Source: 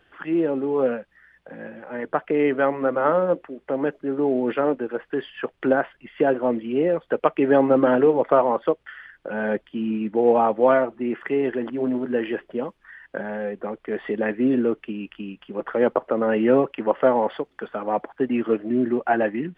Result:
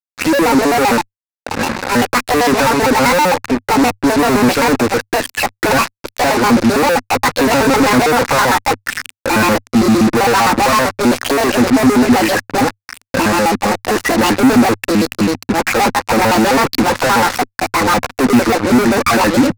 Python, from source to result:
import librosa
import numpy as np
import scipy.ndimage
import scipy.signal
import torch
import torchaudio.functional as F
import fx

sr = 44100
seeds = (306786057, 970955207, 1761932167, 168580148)

y = fx.pitch_trill(x, sr, semitones=8.5, every_ms=65)
y = fx.fuzz(y, sr, gain_db=42.0, gate_db=-38.0)
y = fx.graphic_eq_31(y, sr, hz=(100, 250, 400, 630, 3150), db=(7, 5, -5, -6, -7))
y = F.gain(torch.from_numpy(y), 4.0).numpy()